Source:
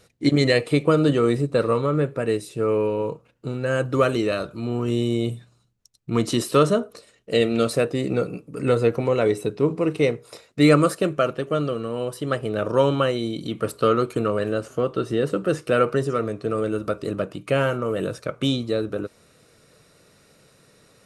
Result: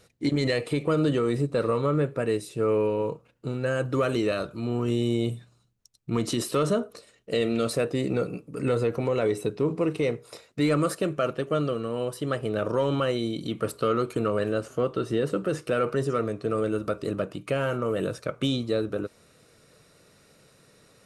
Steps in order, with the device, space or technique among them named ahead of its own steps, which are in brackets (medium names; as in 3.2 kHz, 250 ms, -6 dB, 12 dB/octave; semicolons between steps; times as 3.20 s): soft clipper into limiter (saturation -5.5 dBFS, distortion -27 dB; peak limiter -14 dBFS, peak gain reduction 6.5 dB); trim -2 dB